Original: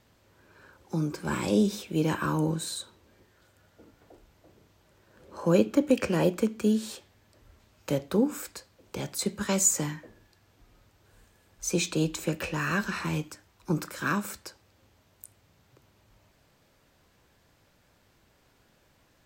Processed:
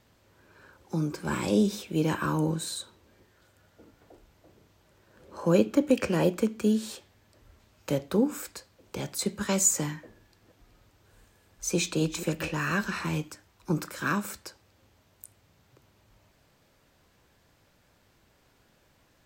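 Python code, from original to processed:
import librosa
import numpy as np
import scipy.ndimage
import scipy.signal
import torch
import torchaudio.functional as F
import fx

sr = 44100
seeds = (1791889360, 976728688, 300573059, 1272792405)

y = fx.reverse_delay(x, sr, ms=245, wet_db=-12, at=(10.03, 12.51))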